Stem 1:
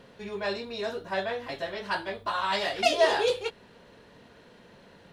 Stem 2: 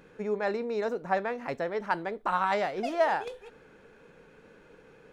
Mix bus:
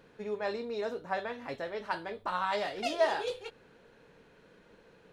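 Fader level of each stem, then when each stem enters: -10.5, -6.0 dB; 0.00, 0.00 s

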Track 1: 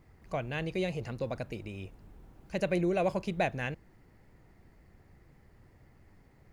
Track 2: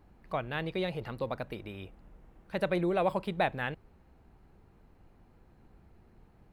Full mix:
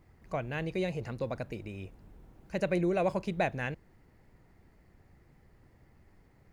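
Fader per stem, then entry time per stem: -2.0, -11.5 dB; 0.00, 0.00 s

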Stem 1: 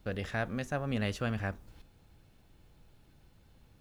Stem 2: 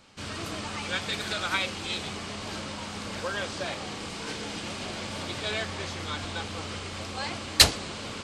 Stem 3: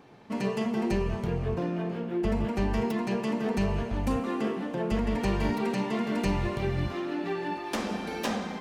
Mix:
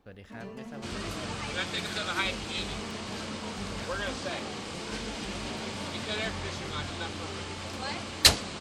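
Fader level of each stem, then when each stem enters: -12.0, -2.0, -14.0 dB; 0.00, 0.65, 0.00 s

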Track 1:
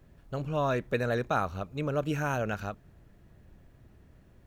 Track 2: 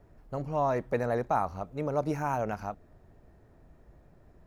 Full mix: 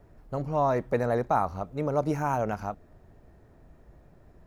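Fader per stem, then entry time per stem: -18.0, +2.5 dB; 0.00, 0.00 s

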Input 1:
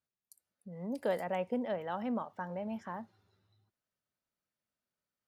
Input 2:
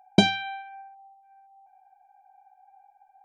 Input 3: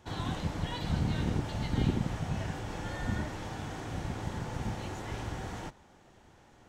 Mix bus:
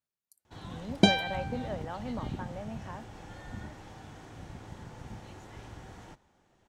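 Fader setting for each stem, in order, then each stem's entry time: -2.5, -3.0, -9.0 dB; 0.00, 0.85, 0.45 s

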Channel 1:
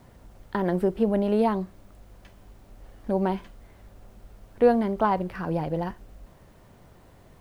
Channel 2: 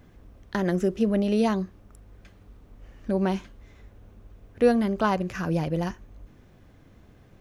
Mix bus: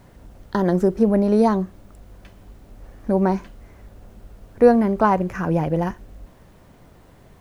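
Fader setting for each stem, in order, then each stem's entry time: +2.5, -2.0 dB; 0.00, 0.00 s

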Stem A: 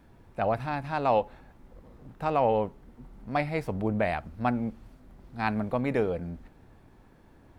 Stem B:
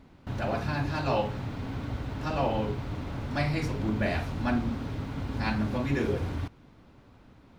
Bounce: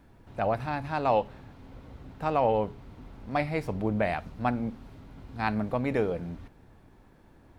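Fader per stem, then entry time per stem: -0.5, -15.0 dB; 0.00, 0.00 s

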